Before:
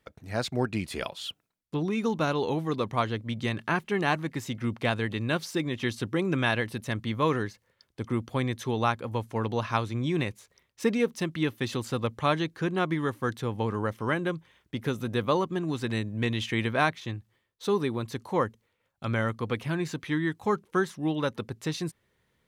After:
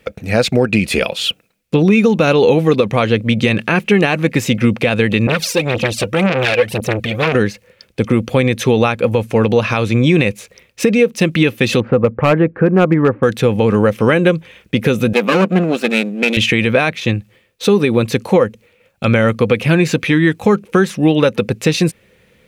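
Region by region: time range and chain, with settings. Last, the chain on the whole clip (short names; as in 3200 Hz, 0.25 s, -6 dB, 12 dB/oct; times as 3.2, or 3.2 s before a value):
5.27–7.35 phaser 1.9 Hz, delay 2.2 ms, feedback 73% + tremolo saw up 3.9 Hz, depth 45% + core saturation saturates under 2700 Hz
11.8–13.23 LPF 1600 Hz 24 dB/oct + hard clip -20.5 dBFS
15.13–16.37 minimum comb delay 0.73 ms + brick-wall FIR high-pass 160 Hz + three-band expander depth 100%
whole clip: thirty-one-band EQ 200 Hz +7 dB, 500 Hz +10 dB, 1000 Hz -6 dB, 2500 Hz +10 dB; compressor 6:1, threshold -24 dBFS; maximiser +18 dB; gain -1 dB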